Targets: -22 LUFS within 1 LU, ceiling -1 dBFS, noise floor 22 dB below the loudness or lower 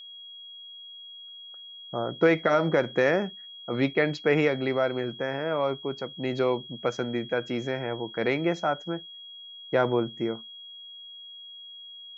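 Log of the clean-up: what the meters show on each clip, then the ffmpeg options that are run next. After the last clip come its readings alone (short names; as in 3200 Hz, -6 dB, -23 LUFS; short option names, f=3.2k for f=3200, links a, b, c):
steady tone 3300 Hz; tone level -42 dBFS; loudness -27.5 LUFS; peak -9.0 dBFS; loudness target -22.0 LUFS
-> -af "bandreject=f=3.3k:w=30"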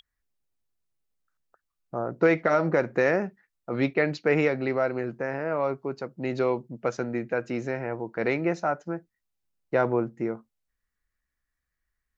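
steady tone none; loudness -27.5 LUFS; peak -9.0 dBFS; loudness target -22.0 LUFS
-> -af "volume=5.5dB"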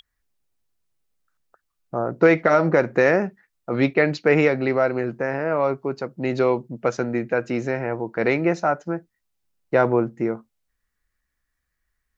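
loudness -22.0 LUFS; peak -3.5 dBFS; noise floor -78 dBFS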